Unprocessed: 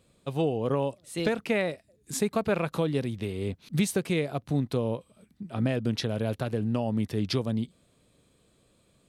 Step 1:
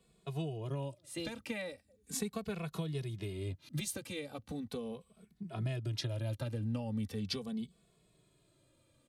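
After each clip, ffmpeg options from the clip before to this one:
-filter_complex "[0:a]acrossover=split=140|3000[a][b][c];[b]acompressor=threshold=-35dB:ratio=4[d];[a][d][c]amix=inputs=3:normalize=0,asplit=2[e][f];[f]adelay=2.3,afreqshift=-0.39[g];[e][g]amix=inputs=2:normalize=1,volume=-2dB"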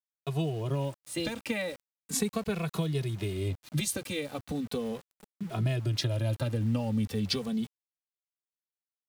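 -af "aeval=exprs='val(0)*gte(abs(val(0)),0.00237)':c=same,volume=7.5dB"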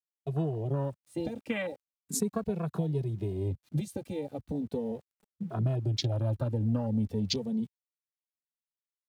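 -af "afwtdn=0.0158"

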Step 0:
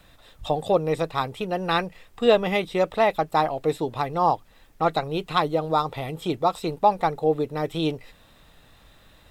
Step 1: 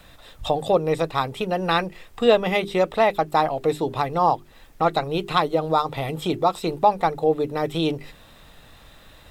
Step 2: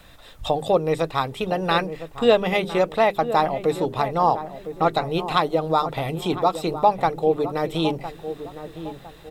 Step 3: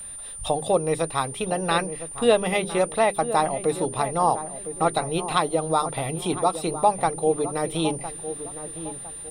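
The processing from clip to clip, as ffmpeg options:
-filter_complex "[0:a]bandreject=f=50:t=h:w=6,bandreject=f=100:t=h:w=6,bandreject=f=150:t=h:w=6,bandreject=f=200:t=h:w=6,bandreject=f=250:t=h:w=6,bandreject=f=300:t=h:w=6,bandreject=f=350:t=h:w=6,bandreject=f=400:t=h:w=6,asplit=2[a][b];[b]acompressor=threshold=-30dB:ratio=6,volume=-1dB[c];[a][c]amix=inputs=2:normalize=0"
-filter_complex "[0:a]asplit=2[a][b];[b]adelay=1008,lowpass=f=1k:p=1,volume=-10.5dB,asplit=2[c][d];[d]adelay=1008,lowpass=f=1k:p=1,volume=0.41,asplit=2[e][f];[f]adelay=1008,lowpass=f=1k:p=1,volume=0.41,asplit=2[g][h];[h]adelay=1008,lowpass=f=1k:p=1,volume=0.41[i];[a][c][e][g][i]amix=inputs=5:normalize=0"
-af "aeval=exprs='val(0)+0.0224*sin(2*PI*9200*n/s)':c=same,volume=-2dB"

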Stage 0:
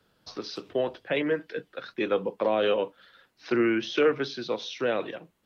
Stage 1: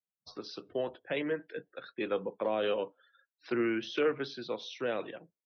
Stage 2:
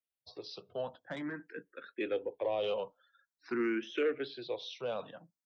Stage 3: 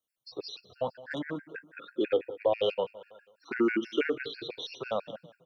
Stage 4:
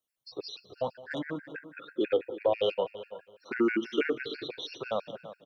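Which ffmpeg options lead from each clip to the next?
-af "afftdn=nr=36:nf=-50,volume=-6.5dB"
-filter_complex "[0:a]asoftclip=type=tanh:threshold=-21.5dB,asplit=2[a][b];[b]afreqshift=0.48[c];[a][c]amix=inputs=2:normalize=1"
-af "aecho=1:1:191|382|573:0.106|0.0434|0.0178,afftfilt=real='re*gt(sin(2*PI*6.1*pts/sr)*(1-2*mod(floor(b*sr/1024/1400),2)),0)':imag='im*gt(sin(2*PI*6.1*pts/sr)*(1-2*mod(floor(b*sr/1024/1400),2)),0)':win_size=1024:overlap=0.75,volume=8.5dB"
-filter_complex "[0:a]asplit=2[a][b];[b]adelay=335,lowpass=f=2.9k:p=1,volume=-14dB,asplit=2[c][d];[d]adelay=335,lowpass=f=2.9k:p=1,volume=0.2[e];[a][c][e]amix=inputs=3:normalize=0"

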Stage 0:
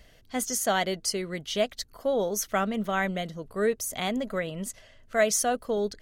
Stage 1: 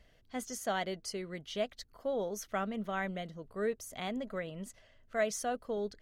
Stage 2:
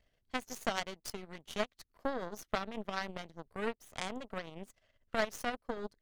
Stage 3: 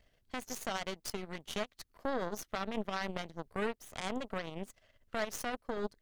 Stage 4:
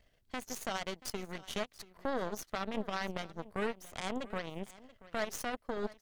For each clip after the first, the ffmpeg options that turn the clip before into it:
-af "highshelf=f=5.5k:g=-9,volume=-8dB"
-af "acompressor=threshold=-49dB:ratio=2,aeval=exprs='0.0237*(cos(1*acos(clip(val(0)/0.0237,-1,1)))-cos(1*PI/2))+0.0075*(cos(3*acos(clip(val(0)/0.0237,-1,1)))-cos(3*PI/2))+0.00133*(cos(4*acos(clip(val(0)/0.0237,-1,1)))-cos(4*PI/2))':c=same,volume=14.5dB"
-af "alimiter=level_in=3dB:limit=-24dB:level=0:latency=1:release=59,volume=-3dB,volume=5dB"
-af "aecho=1:1:682:0.112"

